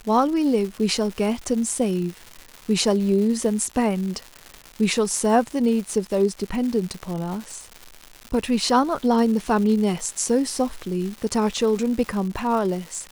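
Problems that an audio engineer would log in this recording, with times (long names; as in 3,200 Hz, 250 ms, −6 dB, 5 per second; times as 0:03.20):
surface crackle 320 per second −30 dBFS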